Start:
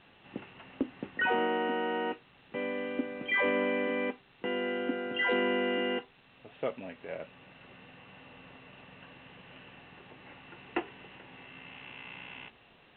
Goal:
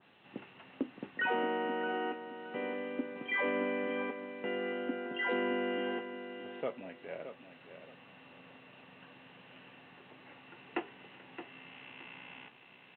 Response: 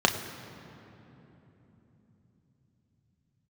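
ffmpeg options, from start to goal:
-filter_complex "[0:a]highpass=130,asplit=2[a][b];[b]aecho=0:1:620|1240|1860:0.299|0.0687|0.0158[c];[a][c]amix=inputs=2:normalize=0,adynamicequalizer=threshold=0.00447:dfrequency=2300:dqfactor=0.7:tfrequency=2300:tqfactor=0.7:attack=5:release=100:ratio=0.375:range=2.5:mode=cutabove:tftype=highshelf,volume=-3.5dB"

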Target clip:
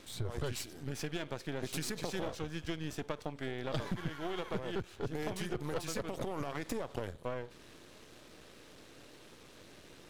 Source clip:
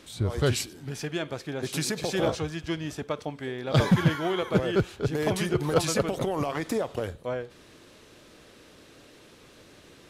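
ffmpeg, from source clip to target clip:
-af "aeval=exprs='if(lt(val(0),0),0.251*val(0),val(0))':c=same,acompressor=threshold=-33dB:ratio=6"

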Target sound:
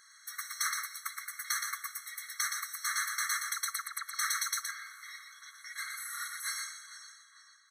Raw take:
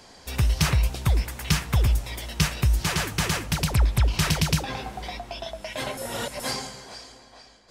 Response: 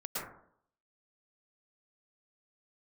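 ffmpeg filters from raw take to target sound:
-filter_complex "[0:a]asuperstop=centerf=3600:order=8:qfactor=5.7,asplit=2[a][b];[b]aecho=0:1:120:0.562[c];[a][c]amix=inputs=2:normalize=0,crystalizer=i=0.5:c=0,afftfilt=real='re*eq(mod(floor(b*sr/1024/1100),2),1)':imag='im*eq(mod(floor(b*sr/1024/1100),2),1)':win_size=1024:overlap=0.75,volume=-3.5dB"

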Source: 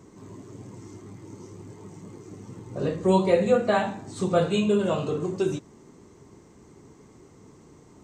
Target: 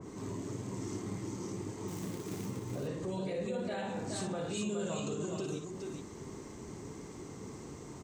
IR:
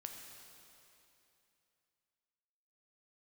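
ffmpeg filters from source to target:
-filter_complex "[0:a]asettb=1/sr,asplit=3[a][b][c];[a]atrim=end=3.064[d];[b]atrim=start=3.06:end=3.82,asetpts=PTS-STARTPTS,afade=t=in:d=0.004:c=qsin,afade=t=out:st=0.756:d=0.004:c=qsin,equalizer=f=1.1k:t=o:w=0.32:g=-12.5[e];[c]atrim=start=3.816[f];[d][e]acrossfade=d=0.004:c1=hsin:c2=qsin[g];[g][f]acrossfade=d=0.004:c1=qsin:c2=hsin,alimiter=level_in=11dB:limit=-24dB:level=0:latency=1:release=261,volume=-11dB,asettb=1/sr,asplit=3[h][i][j];[h]atrim=end=1.884[k];[i]atrim=start=1.88:end=2.46,asetpts=PTS-STARTPTS,afade=t=in:d=0.004:c=qsin,afade=t=out:st=0.576:d=0.004:c=qsin,acrusher=bits=3:mode=log:mix=0:aa=0.000001[l];[j]atrim=start=2.456[m];[k][l]acrossfade=d=0.004:c1=hsin:c2=qsin[n];[n][m]acrossfade=d=0.004:c1=qsin:c2=hsin,asettb=1/sr,asplit=3[o][p][q];[o]atrim=end=4.534[r];[p]atrim=start=4.53:end=5.29,asetpts=PTS-STARTPTS,afade=t=in:d=0.004:c=qsin,afade=t=out:st=0.756:d=0.004:c=qsin,lowpass=f=7.1k:t=q:w=5.2[s];[q]atrim=start=5.286[t];[r][s]acrossfade=d=0.004:c1=hsin:c2=qsin[u];[u][t]acrossfade=d=0.004:c1=qsin:c2=hsin,aecho=1:1:57|418:0.447|0.562,adynamicequalizer=threshold=0.001:dfrequency=2200:dqfactor=0.7:tfrequency=2200:tqfactor=0.7:attack=5:release=100:ratio=0.375:range=1.5:mode=boostabove:tftype=highshelf,volume=3.5dB"

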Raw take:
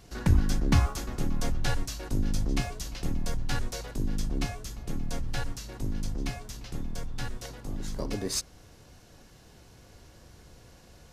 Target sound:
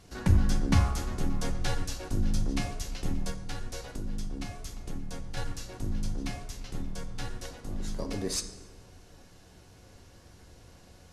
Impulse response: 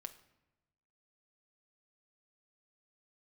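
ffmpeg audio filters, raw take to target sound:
-filter_complex "[0:a]asettb=1/sr,asplit=3[a][b][c];[a]atrim=end=3.304[d];[b]atrim=start=3.3:end=5.37,asetpts=PTS-STARTPTS,afade=t=in:d=0.004:c=qsin,afade=t=out:st=2.066:d=0.004:c=qsin,acompressor=threshold=-34dB:ratio=2[e];[c]atrim=start=5.366[f];[d][e]acrossfade=d=0.004:c1=hsin:c2=qsin[g];[g][f]acrossfade=d=0.004:c1=qsin:c2=hsin[h];[1:a]atrim=start_sample=2205,asetrate=22932,aresample=44100[i];[h][i]afir=irnorm=-1:irlink=0"

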